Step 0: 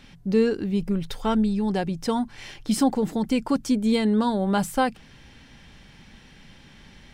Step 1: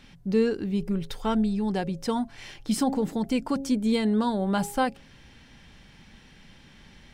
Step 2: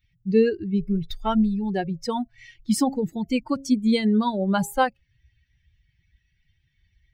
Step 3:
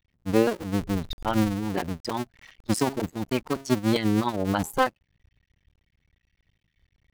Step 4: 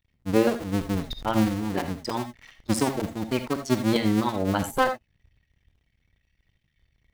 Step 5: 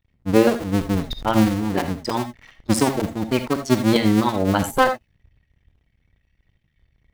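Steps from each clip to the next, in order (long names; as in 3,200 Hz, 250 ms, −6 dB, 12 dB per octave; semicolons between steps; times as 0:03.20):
hum removal 136.4 Hz, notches 6; level −2.5 dB
spectral dynamics exaggerated over time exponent 2; level +6.5 dB
sub-harmonics by changed cycles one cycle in 2, muted
reverb whose tail is shaped and stops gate 100 ms rising, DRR 8 dB
one half of a high-frequency compander decoder only; level +5.5 dB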